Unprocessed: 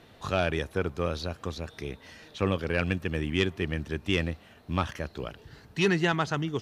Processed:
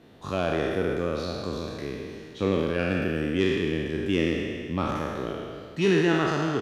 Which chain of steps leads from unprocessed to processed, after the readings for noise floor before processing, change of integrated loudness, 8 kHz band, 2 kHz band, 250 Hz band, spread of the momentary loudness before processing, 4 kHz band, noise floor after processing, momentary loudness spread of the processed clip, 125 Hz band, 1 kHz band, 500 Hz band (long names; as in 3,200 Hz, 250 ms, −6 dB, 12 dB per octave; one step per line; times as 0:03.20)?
−55 dBFS, +3.0 dB, +0.5 dB, +0.5 dB, +5.0 dB, 14 LU, 0.0 dB, −44 dBFS, 11 LU, +0.5 dB, +1.5 dB, +4.5 dB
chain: peak hold with a decay on every bin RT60 2.07 s
parametric band 270 Hz +9.5 dB 2 octaves
far-end echo of a speakerphone 110 ms, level −9 dB
level −6.5 dB